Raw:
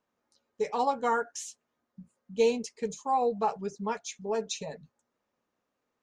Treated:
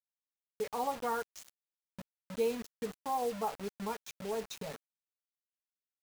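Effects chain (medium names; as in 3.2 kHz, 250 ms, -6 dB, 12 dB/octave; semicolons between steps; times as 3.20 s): treble shelf 4.2 kHz -11.5 dB; in parallel at +1 dB: compression 8:1, threshold -38 dBFS, peak gain reduction 17 dB; on the sum: word length cut 6-bit, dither none; trim -8.5 dB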